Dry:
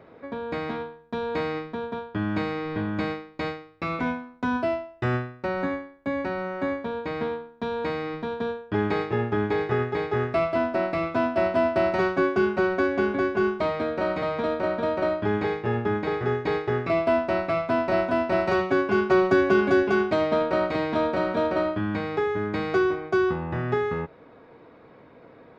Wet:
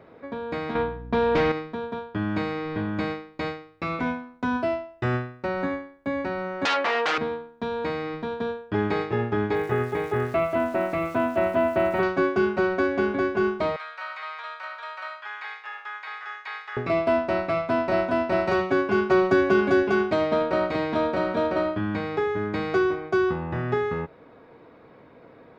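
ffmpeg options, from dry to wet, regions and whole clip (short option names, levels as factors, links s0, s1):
-filter_complex "[0:a]asettb=1/sr,asplit=3[s0][s1][s2];[s0]atrim=end=0.754[s3];[s1]atrim=start=0.75:end=1.52,asetpts=PTS-STARTPTS,afade=t=in:d=0.004:c=qsin,afade=t=out:st=0.766:d=0.004:c=qsin,lowpass=3600,aeval=exprs='val(0)+0.00501*(sin(2*PI*60*n/s)+sin(2*PI*2*60*n/s)/2+sin(2*PI*3*60*n/s)/3+sin(2*PI*4*60*n/s)/4+sin(2*PI*5*60*n/s)/5)':c=same,aeval=exprs='0.15*sin(PI/2*1.78*val(0)/0.15)':c=same[s4];[s2]atrim=start=1.516[s5];[s3][s4]acrossfade=d=0.004:c1=hsin:c2=qsin[s6];[s6][s5]acrossfade=d=0.004:c1=qsin:c2=hsin,asettb=1/sr,asplit=3[s7][s8][s9];[s7]atrim=end=6.654[s10];[s8]atrim=start=6.65:end=7.18,asetpts=PTS-STARTPTS,afade=t=in:d=0.004:c=qsin,afade=t=out:st=0.526:d=0.004:c=qsin,highshelf=f=2800:g=-10,aeval=exprs='0.119*sin(PI/2*5.01*val(0)/0.119)':c=same,highpass=530[s11];[s9]atrim=start=7.176[s12];[s10][s11]acrossfade=d=0.004:c1=hsin:c2=qsin[s13];[s13][s12]acrossfade=d=0.004:c1=qsin:c2=hsin,asettb=1/sr,asplit=3[s14][s15][s16];[s14]atrim=end=9.554[s17];[s15]atrim=start=9.55:end=12.03,asetpts=PTS-STARTPTS,afade=t=in:d=0.004:c=qsin,afade=t=out:st=2.476:d=0.004:c=qsin,lowpass=f=3300:w=0.5412,lowpass=f=3300:w=1.3066,aeval=exprs='val(0)*gte(abs(val(0)),0.00631)':c=same[s18];[s16]atrim=start=12.026[s19];[s17][s18]acrossfade=d=0.004:c1=hsin:c2=qsin[s20];[s20][s19]acrossfade=d=0.004:c1=qsin:c2=hsin,asettb=1/sr,asplit=3[s21][s22][s23];[s21]atrim=end=13.764[s24];[s22]atrim=start=13.76:end=16.77,asetpts=PTS-STARTPTS,afade=t=in:d=0.004:c=qsin,afade=t=out:st=3.006:d=0.004:c=qsin,acrossover=split=3700[s25][s26];[s26]acompressor=threshold=0.00178:ratio=4:attack=1:release=60[s27];[s25][s27]amix=inputs=2:normalize=0,highpass=f=1100:w=0.5412,highpass=f=1100:w=1.3066[s28];[s23]atrim=start=16.766[s29];[s24][s28]acrossfade=d=0.004:c1=hsin:c2=qsin[s30];[s30][s29]acrossfade=d=0.004:c1=qsin:c2=hsin"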